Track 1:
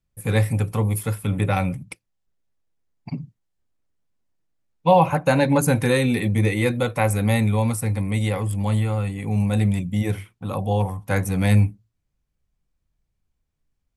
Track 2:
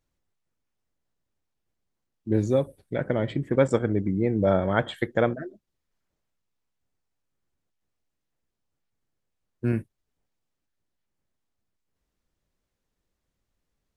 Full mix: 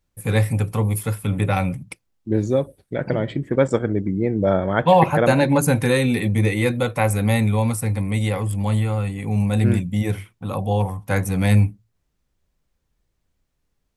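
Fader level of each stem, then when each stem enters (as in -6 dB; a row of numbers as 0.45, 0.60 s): +1.0, +3.0 dB; 0.00, 0.00 s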